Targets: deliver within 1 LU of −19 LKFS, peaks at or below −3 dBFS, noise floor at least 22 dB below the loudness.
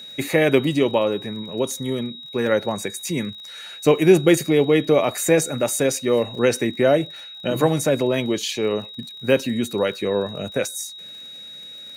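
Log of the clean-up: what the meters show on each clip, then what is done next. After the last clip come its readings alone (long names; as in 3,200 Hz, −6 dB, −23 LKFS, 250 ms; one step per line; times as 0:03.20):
crackle rate 41 per second; interfering tone 3,800 Hz; level of the tone −36 dBFS; integrated loudness −21.0 LKFS; sample peak −3.0 dBFS; target loudness −19.0 LKFS
→ click removal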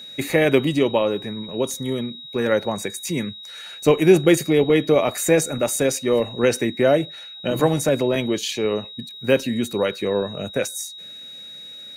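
crackle rate 0.58 per second; interfering tone 3,800 Hz; level of the tone −36 dBFS
→ notch filter 3,800 Hz, Q 30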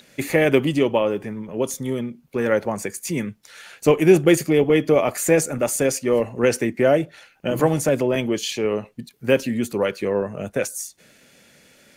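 interfering tone none found; integrated loudness −21.0 LKFS; sample peak −2.5 dBFS; target loudness −19.0 LKFS
→ level +2 dB
brickwall limiter −3 dBFS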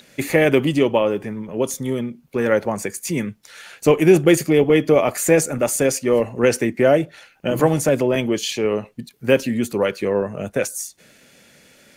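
integrated loudness −19.0 LKFS; sample peak −3.0 dBFS; background noise floor −54 dBFS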